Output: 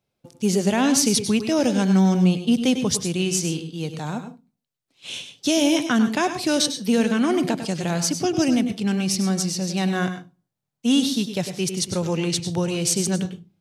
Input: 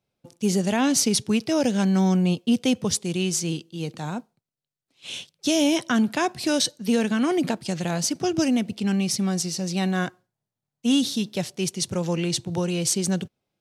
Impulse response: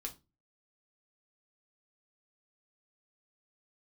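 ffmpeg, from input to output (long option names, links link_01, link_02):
-filter_complex "[0:a]asplit=2[link_01][link_02];[1:a]atrim=start_sample=2205,adelay=99[link_03];[link_02][link_03]afir=irnorm=-1:irlink=0,volume=-6.5dB[link_04];[link_01][link_04]amix=inputs=2:normalize=0,volume=1.5dB"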